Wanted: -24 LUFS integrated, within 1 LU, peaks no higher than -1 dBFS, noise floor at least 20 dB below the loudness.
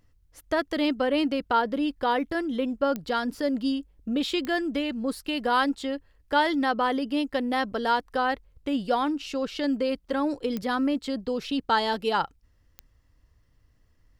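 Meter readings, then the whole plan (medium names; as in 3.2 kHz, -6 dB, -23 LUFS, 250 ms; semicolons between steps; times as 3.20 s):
clicks found 4; loudness -27.0 LUFS; peak level -9.5 dBFS; loudness target -24.0 LUFS
-> de-click; trim +3 dB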